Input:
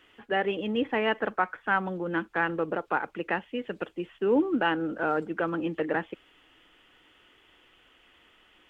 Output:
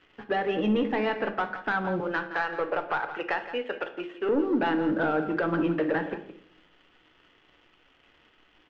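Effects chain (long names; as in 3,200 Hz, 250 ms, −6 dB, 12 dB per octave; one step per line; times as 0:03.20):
0:02.00–0:04.29: high-pass filter 560 Hz 12 dB per octave
downward compressor 6 to 1, threshold −28 dBFS, peak gain reduction 9 dB
leveller curve on the samples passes 2
high-frequency loss of the air 190 metres
single-tap delay 169 ms −12.5 dB
rectangular room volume 99 cubic metres, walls mixed, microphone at 0.34 metres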